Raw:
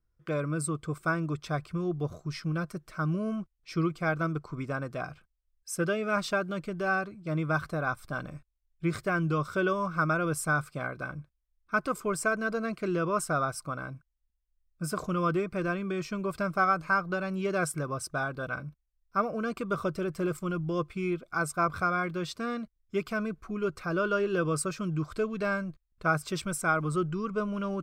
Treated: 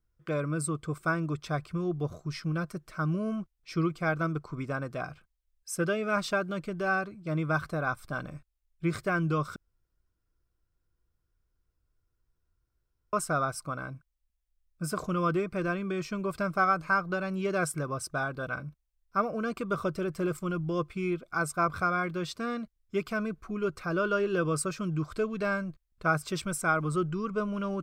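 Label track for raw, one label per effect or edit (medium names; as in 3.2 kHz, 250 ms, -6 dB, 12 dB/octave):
9.560000	13.130000	room tone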